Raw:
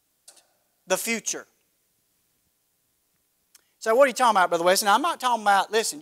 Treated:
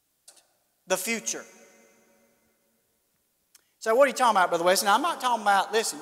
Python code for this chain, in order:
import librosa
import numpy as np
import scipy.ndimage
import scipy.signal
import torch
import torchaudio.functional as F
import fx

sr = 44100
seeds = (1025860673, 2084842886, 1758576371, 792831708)

y = fx.rev_plate(x, sr, seeds[0], rt60_s=3.5, hf_ratio=0.6, predelay_ms=0, drr_db=17.5)
y = y * 10.0 ** (-2.0 / 20.0)